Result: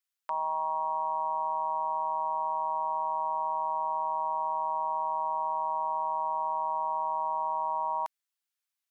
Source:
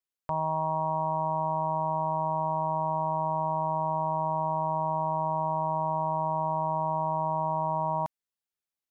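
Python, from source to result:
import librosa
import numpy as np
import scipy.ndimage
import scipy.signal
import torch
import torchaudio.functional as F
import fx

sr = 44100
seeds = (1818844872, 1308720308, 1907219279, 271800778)

y = scipy.signal.sosfilt(scipy.signal.butter(2, 1100.0, 'highpass', fs=sr, output='sos'), x)
y = y * 10.0 ** (4.0 / 20.0)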